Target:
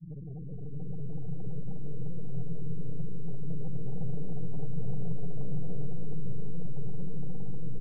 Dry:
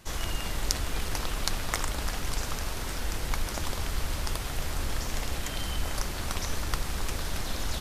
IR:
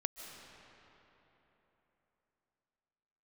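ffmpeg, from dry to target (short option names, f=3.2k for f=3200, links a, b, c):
-filter_complex "[0:a]asuperpass=centerf=150:order=20:qfactor=2.3,aeval=exprs='(tanh(631*val(0)+0.65)-tanh(0.65))/631':c=same,asettb=1/sr,asplit=3[a][b][c];[a]atrim=end=3.484[d];[b]atrim=start=3.48:end=5.93,asetpts=PTS-STARTPTS,afade=t=in:d=0.004:c=qsin,afade=t=out:st=2.446:d=0.004:c=qsin,acontrast=25[e];[c]atrim=start=5.926[f];[d][e]acrossfade=d=0.004:c1=hsin:c2=qsin[g];[g][f]acrossfade=d=0.004:c1=qsin:c2=hsin,aecho=1:1:310:0.266,acompressor=mode=upward:threshold=-42dB:ratio=2.5[h];[1:a]atrim=start_sample=2205,asetrate=27342,aresample=44100[i];[h][i]afir=irnorm=-1:irlink=0,afftfilt=real='re*gte(hypot(re,im),0.00447)':imag='im*gte(hypot(re,im),0.00447)':win_size=1024:overlap=0.75,volume=9dB"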